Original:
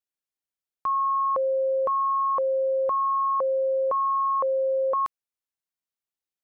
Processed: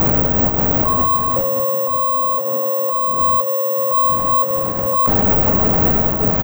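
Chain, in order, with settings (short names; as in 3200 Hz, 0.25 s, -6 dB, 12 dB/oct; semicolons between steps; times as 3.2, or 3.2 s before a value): wind noise 480 Hz -30 dBFS; bell 360 Hz -11 dB 0.3 oct; negative-ratio compressor -36 dBFS, ratio -1; 1.16–3.18 band-pass 490 Hz, Q 0.66; feedback echo 0.571 s, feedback 32%, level -9.5 dB; reverb RT60 0.35 s, pre-delay 6 ms, DRR 5.5 dB; careless resampling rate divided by 2×, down none, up zero stuff; maximiser +20 dB; gain -3 dB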